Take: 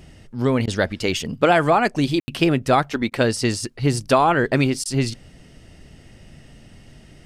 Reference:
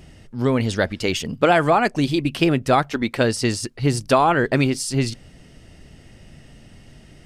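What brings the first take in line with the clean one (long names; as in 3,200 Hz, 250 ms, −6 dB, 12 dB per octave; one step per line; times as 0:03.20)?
ambience match 0:02.20–0:02.28
repair the gap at 0:00.66/0:03.10/0:04.84, 14 ms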